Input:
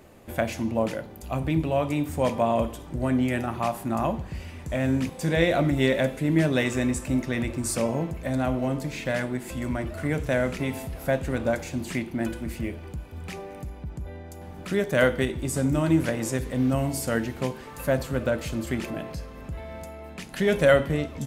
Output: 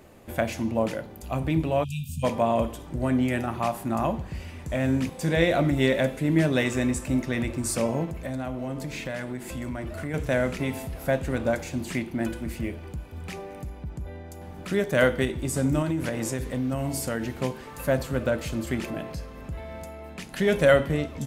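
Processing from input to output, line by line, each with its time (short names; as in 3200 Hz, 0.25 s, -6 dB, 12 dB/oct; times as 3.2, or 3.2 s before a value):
1.84–2.24 spectral delete 240–2400 Hz
8.05–10.14 compressor 3:1, threshold -29 dBFS
15.82–17.3 compressor, threshold -23 dBFS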